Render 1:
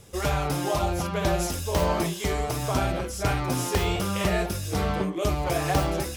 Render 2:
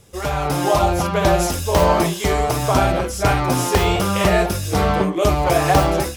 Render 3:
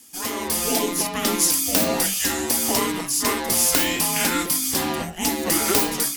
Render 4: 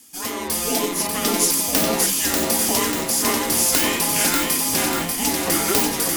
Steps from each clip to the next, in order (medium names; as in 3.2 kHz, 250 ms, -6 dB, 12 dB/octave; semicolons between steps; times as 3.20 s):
dynamic bell 830 Hz, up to +4 dB, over -35 dBFS, Q 0.73; level rider gain up to 8 dB
frequency shift -360 Hz; RIAA curve recording; trim -3.5 dB
bit-crushed delay 591 ms, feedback 55%, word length 7-bit, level -3.5 dB